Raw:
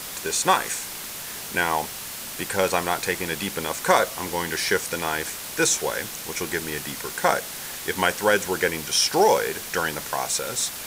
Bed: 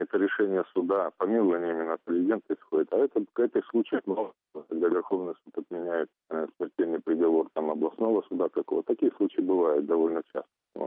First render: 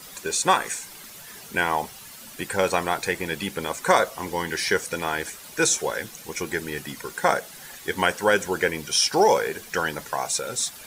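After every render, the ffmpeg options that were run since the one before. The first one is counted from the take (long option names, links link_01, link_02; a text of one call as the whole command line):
ffmpeg -i in.wav -af "afftdn=noise_reduction=11:noise_floor=-35" out.wav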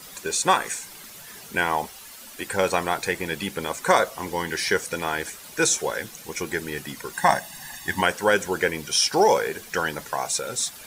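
ffmpeg -i in.wav -filter_complex "[0:a]asettb=1/sr,asplit=3[link_01][link_02][link_03];[link_01]atrim=end=1.874[link_04];[link_02]atrim=start=1.87:end=2.47,asetpts=PTS-STARTPTS,afade=type=in:duration=0.004:curve=qsin,afade=type=out:start_time=0.596:duration=0.004:curve=qsin,equalizer=frequency=140:width=1.9:gain=-14.5[link_05];[link_03]atrim=start=2.466[link_06];[link_04][link_05]acrossfade=duration=0.004:curve1=hsin:curve2=qsin[link_07];[link_07][link_06]acrossfade=duration=0.004:curve1=qsin:curve2=hsin,asettb=1/sr,asplit=3[link_08][link_09][link_10];[link_08]atrim=end=7.134[link_11];[link_09]atrim=start=7.13:end=8.01,asetpts=PTS-STARTPTS,afade=type=in:duration=0.004:curve=qsin,afade=type=out:start_time=0.876:duration=0.004:curve=qsin,aecho=1:1:1.1:0.87,atrim=end_sample=38808[link_12];[link_10]atrim=start=8.006[link_13];[link_11][link_12]acrossfade=duration=0.004:curve1=hsin:curve2=qsin[link_14];[link_14][link_13]acrossfade=duration=0.004:curve1=qsin:curve2=hsin" out.wav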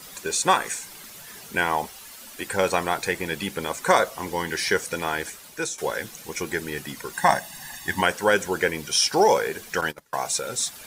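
ffmpeg -i in.wav -filter_complex "[0:a]asettb=1/sr,asplit=3[link_01][link_02][link_03];[link_01]atrim=end=9.814[link_04];[link_02]atrim=start=9.81:end=10.25,asetpts=PTS-STARTPTS,afade=type=in:duration=0.004:curve=qsin,afade=type=out:start_time=0.436:duration=0.004:curve=qsin,agate=range=-24dB:threshold=-30dB:ratio=16:release=100:detection=peak[link_05];[link_03]atrim=start=10.246[link_06];[link_04][link_05]acrossfade=duration=0.004:curve1=hsin:curve2=qsin[link_07];[link_07][link_06]acrossfade=duration=0.004:curve1=qsin:curve2=hsin,asplit=2[link_08][link_09];[link_08]atrim=end=5.78,asetpts=PTS-STARTPTS,afade=type=out:start_time=5.07:duration=0.71:curve=qsin:silence=0.16788[link_10];[link_09]atrim=start=5.78,asetpts=PTS-STARTPTS,afade=type=in:duration=0.004:curve=hsin:silence=0.16788[link_11];[link_10][link_11]concat=n=2:v=0:a=1" out.wav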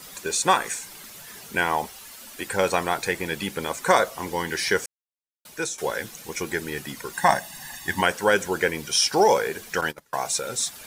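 ffmpeg -i in.wav -filter_complex "[0:a]asplit=3[link_01][link_02][link_03];[link_01]atrim=end=4.86,asetpts=PTS-STARTPTS,afade=type=out:start_time=4.856:duration=0.004:curve=hsin[link_04];[link_02]atrim=start=4.86:end=5.45,asetpts=PTS-STARTPTS,volume=0[link_05];[link_03]atrim=start=5.45,asetpts=PTS-STARTPTS,afade=type=in:duration=0.004:curve=hsin[link_06];[link_04][link_05][link_06]concat=n=3:v=0:a=1" out.wav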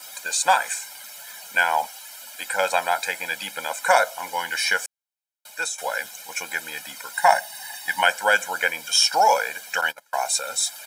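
ffmpeg -i in.wav -af "highpass=530,aecho=1:1:1.3:0.9" out.wav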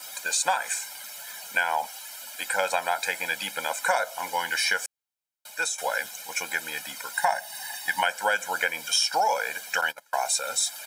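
ffmpeg -i in.wav -af "acompressor=threshold=-21dB:ratio=4" out.wav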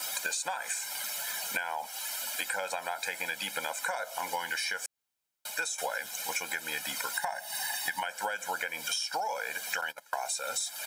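ffmpeg -i in.wav -filter_complex "[0:a]asplit=2[link_01][link_02];[link_02]alimiter=limit=-18dB:level=0:latency=1,volume=-2dB[link_03];[link_01][link_03]amix=inputs=2:normalize=0,acompressor=threshold=-30dB:ratio=10" out.wav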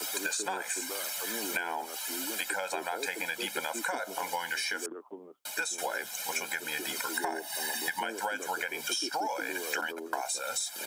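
ffmpeg -i in.wav -i bed.wav -filter_complex "[1:a]volume=-17dB[link_01];[0:a][link_01]amix=inputs=2:normalize=0" out.wav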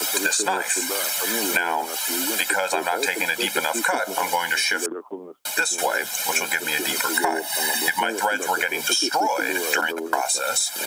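ffmpeg -i in.wav -af "volume=11dB" out.wav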